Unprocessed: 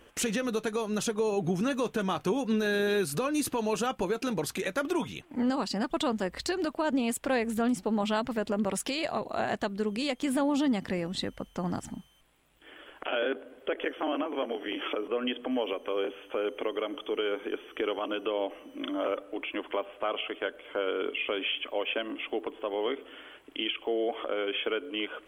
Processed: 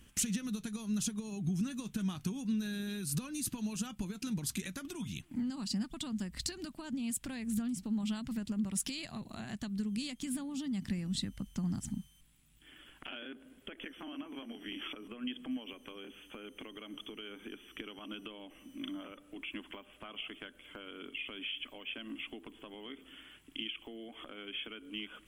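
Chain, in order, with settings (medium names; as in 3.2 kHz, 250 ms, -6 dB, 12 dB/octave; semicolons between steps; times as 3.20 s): treble shelf 12 kHz -6 dB; compression, threshold -32 dBFS, peak gain reduction 9 dB; FFT filter 210 Hz 0 dB, 480 Hz -23 dB, 8.8 kHz +2 dB; trim +4 dB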